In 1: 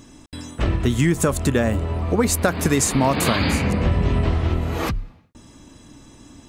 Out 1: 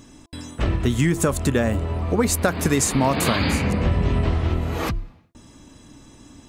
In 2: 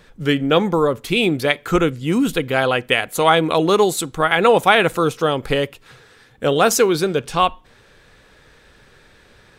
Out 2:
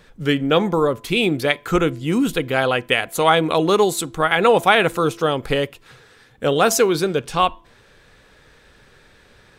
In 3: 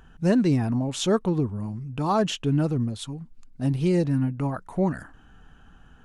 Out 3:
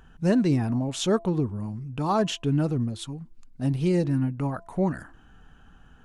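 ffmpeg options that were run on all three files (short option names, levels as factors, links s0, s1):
-af "bandreject=f=337.6:t=h:w=4,bandreject=f=675.2:t=h:w=4,bandreject=f=1012.8:t=h:w=4,volume=0.891"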